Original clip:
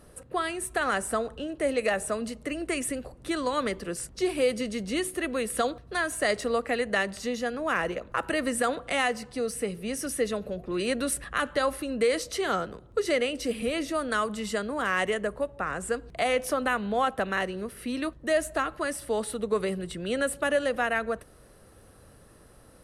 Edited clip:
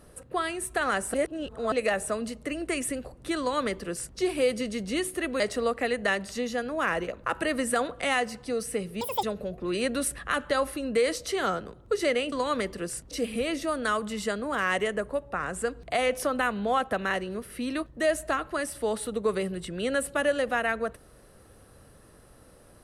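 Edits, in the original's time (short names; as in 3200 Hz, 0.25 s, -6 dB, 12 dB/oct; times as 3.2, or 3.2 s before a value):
1.14–1.72 reverse
3.39–4.18 copy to 13.38
5.4–6.28 cut
9.89–10.29 speed 180%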